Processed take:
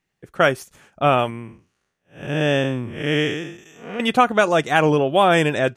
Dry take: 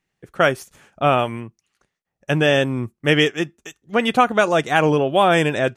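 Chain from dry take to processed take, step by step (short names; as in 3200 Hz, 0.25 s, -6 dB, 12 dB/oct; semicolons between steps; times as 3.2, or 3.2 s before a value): 1.3–4 time blur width 0.205 s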